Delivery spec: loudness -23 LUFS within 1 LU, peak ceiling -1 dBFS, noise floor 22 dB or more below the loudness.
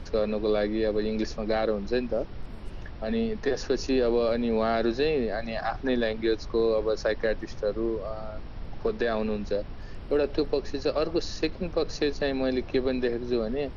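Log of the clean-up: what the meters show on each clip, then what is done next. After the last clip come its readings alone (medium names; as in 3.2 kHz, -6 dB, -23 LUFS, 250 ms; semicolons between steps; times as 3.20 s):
noise floor -40 dBFS; noise floor target -50 dBFS; loudness -28.0 LUFS; peak level -12.5 dBFS; loudness target -23.0 LUFS
-> noise print and reduce 10 dB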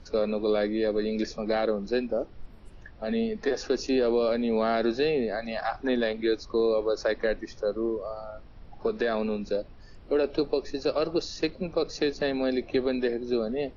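noise floor -48 dBFS; noise floor target -50 dBFS
-> noise print and reduce 6 dB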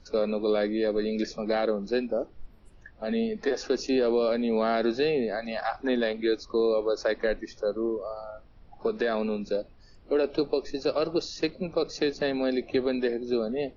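noise floor -53 dBFS; loudness -28.0 LUFS; peak level -13.5 dBFS; loudness target -23.0 LUFS
-> trim +5 dB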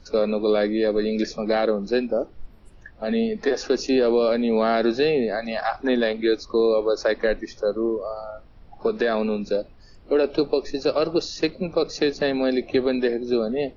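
loudness -23.0 LUFS; peak level -8.5 dBFS; noise floor -48 dBFS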